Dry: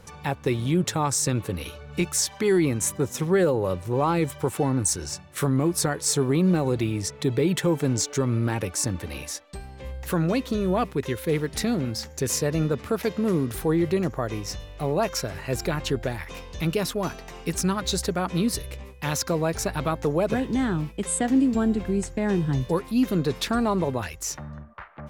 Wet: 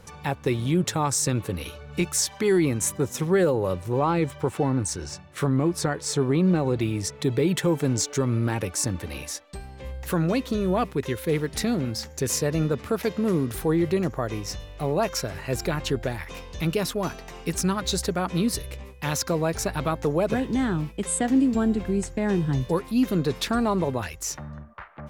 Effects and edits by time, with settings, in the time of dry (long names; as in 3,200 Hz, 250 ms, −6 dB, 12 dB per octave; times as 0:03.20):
0:03.99–0:06.81: parametric band 14,000 Hz −12 dB 1.3 octaves